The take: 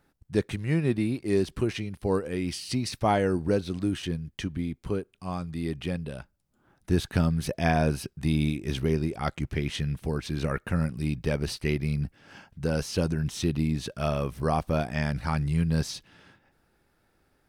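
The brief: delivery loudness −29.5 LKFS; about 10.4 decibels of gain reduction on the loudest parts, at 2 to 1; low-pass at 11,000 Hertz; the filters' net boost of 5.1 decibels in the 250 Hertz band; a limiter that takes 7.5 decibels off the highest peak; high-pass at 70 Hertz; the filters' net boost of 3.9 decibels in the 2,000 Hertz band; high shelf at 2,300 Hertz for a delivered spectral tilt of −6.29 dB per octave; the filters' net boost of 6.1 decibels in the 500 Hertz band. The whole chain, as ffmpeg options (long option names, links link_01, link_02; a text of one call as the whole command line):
ffmpeg -i in.wav -af "highpass=70,lowpass=11000,equalizer=frequency=250:width_type=o:gain=5.5,equalizer=frequency=500:width_type=o:gain=6,equalizer=frequency=2000:width_type=o:gain=8.5,highshelf=frequency=2300:gain=-8,acompressor=threshold=-34dB:ratio=2,volume=5dB,alimiter=limit=-16.5dB:level=0:latency=1" out.wav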